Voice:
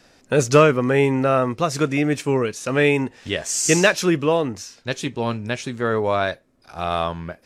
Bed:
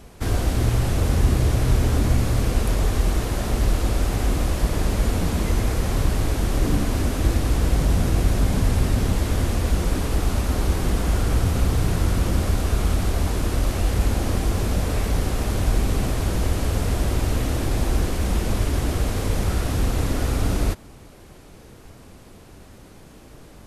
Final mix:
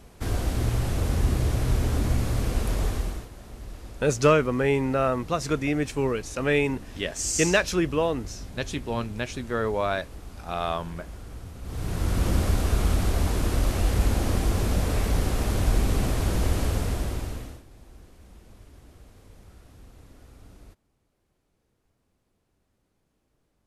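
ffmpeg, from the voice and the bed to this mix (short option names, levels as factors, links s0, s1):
-filter_complex "[0:a]adelay=3700,volume=0.531[s0];[1:a]volume=4.47,afade=t=out:st=2.86:d=0.43:silence=0.177828,afade=t=in:st=11.62:d=0.67:silence=0.125893,afade=t=out:st=16.6:d=1.03:silence=0.0501187[s1];[s0][s1]amix=inputs=2:normalize=0"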